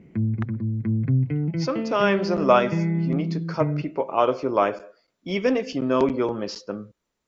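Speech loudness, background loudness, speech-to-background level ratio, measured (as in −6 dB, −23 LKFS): −24.0 LKFS, −26.5 LKFS, 2.5 dB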